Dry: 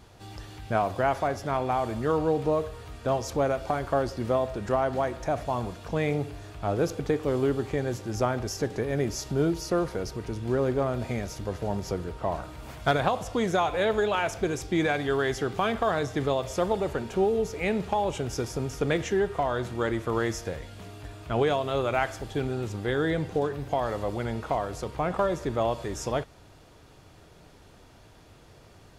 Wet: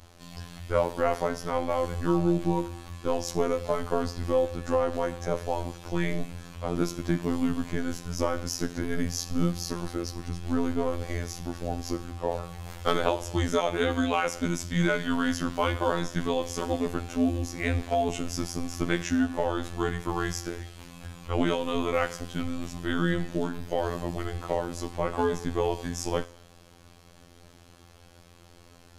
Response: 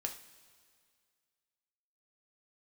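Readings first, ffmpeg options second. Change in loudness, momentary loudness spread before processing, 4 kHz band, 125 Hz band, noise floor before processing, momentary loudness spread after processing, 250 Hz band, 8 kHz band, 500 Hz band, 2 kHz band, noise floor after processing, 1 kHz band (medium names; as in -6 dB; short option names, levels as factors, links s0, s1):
-1.0 dB, 7 LU, +1.5 dB, -1.0 dB, -53 dBFS, 8 LU, +2.0 dB, +2.5 dB, -2.5 dB, -1.0 dB, -54 dBFS, -3.0 dB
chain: -filter_complex "[0:a]asplit=2[s0][s1];[1:a]atrim=start_sample=2205,afade=t=out:st=0.34:d=0.01,atrim=end_sample=15435,highshelf=f=3100:g=10.5[s2];[s1][s2]afir=irnorm=-1:irlink=0,volume=0.473[s3];[s0][s3]amix=inputs=2:normalize=0,afreqshift=-140,afftfilt=real='hypot(re,im)*cos(PI*b)':imag='0':win_size=2048:overlap=0.75"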